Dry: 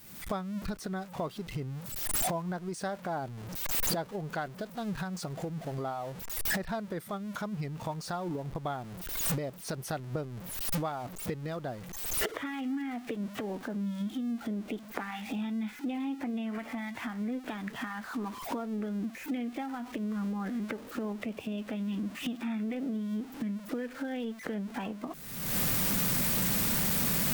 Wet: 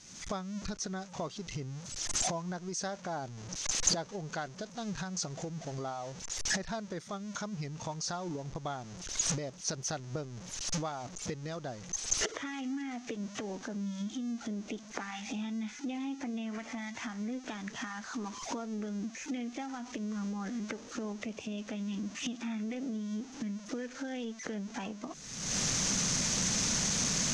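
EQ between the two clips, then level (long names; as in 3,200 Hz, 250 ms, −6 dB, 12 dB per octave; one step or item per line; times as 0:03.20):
low-pass with resonance 6,300 Hz, resonance Q 6.5
high-frequency loss of the air 88 metres
high-shelf EQ 4,600 Hz +9.5 dB
−3.0 dB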